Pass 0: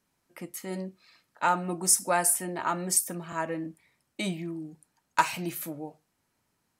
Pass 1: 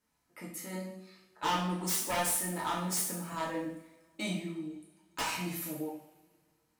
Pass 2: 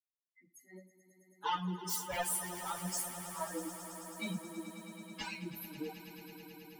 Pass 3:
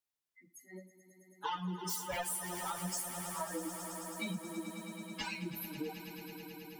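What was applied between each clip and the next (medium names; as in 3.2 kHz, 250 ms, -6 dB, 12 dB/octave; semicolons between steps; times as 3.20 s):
wavefolder -22.5 dBFS; two-slope reverb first 0.62 s, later 2.1 s, from -22 dB, DRR -5 dB; trim -8 dB
expander on every frequency bin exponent 3; on a send: echo with a slow build-up 108 ms, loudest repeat 5, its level -15 dB
compression 4:1, threshold -39 dBFS, peak gain reduction 8 dB; trim +3.5 dB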